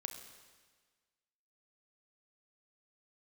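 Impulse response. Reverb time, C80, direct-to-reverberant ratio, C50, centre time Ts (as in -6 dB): 1.5 s, 8.5 dB, 5.0 dB, 7.0 dB, 30 ms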